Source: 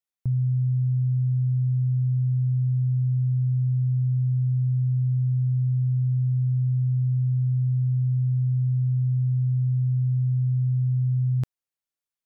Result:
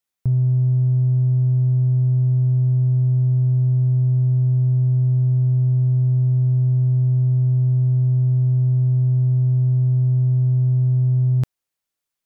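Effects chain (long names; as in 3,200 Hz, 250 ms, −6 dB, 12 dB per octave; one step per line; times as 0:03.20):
in parallel at −8 dB: soft clipping −29.5 dBFS, distortion −12 dB
on the sum: level +4.5 dB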